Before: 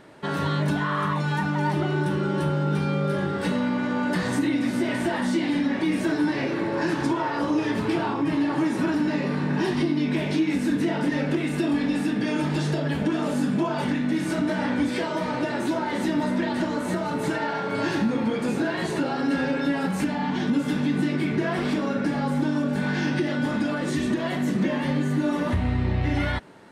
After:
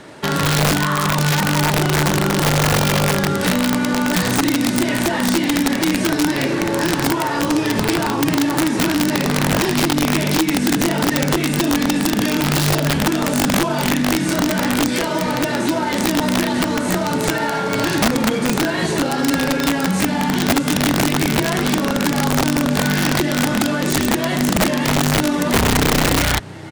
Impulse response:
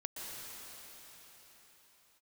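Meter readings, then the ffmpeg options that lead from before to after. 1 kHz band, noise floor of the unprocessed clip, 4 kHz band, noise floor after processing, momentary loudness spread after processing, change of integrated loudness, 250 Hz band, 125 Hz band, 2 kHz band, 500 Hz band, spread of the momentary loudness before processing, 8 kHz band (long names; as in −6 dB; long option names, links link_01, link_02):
+8.5 dB, −28 dBFS, +14.5 dB, −21 dBFS, 3 LU, +7.5 dB, +5.5 dB, +6.5 dB, +9.0 dB, +6.5 dB, 2 LU, +20.5 dB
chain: -filter_complex "[0:a]aemphasis=mode=production:type=cd,acrusher=bits=3:mode=log:mix=0:aa=0.000001,lowpass=8500,acontrast=60,asplit=3[link_01][link_02][link_03];[link_02]adelay=481,afreqshift=34,volume=-22.5dB[link_04];[link_03]adelay=962,afreqshift=68,volume=-31.9dB[link_05];[link_01][link_04][link_05]amix=inputs=3:normalize=0,acrossover=split=180[link_06][link_07];[link_07]acompressor=threshold=-23dB:ratio=2[link_08];[link_06][link_08]amix=inputs=2:normalize=0,aeval=exprs='(mod(4.73*val(0)+1,2)-1)/4.73':channel_layout=same,volume=3.5dB"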